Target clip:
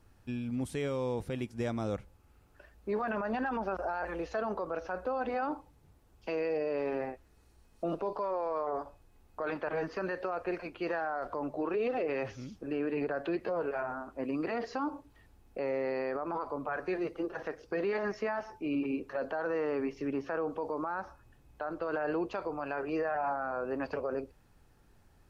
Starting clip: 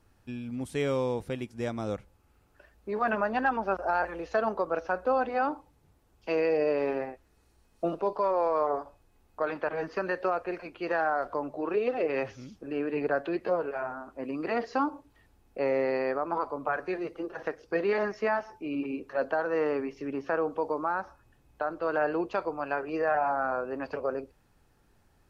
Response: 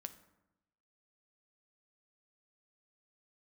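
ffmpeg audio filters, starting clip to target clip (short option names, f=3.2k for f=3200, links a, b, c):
-af "alimiter=level_in=1.5dB:limit=-24dB:level=0:latency=1:release=36,volume=-1.5dB,lowshelf=f=160:g=3.5"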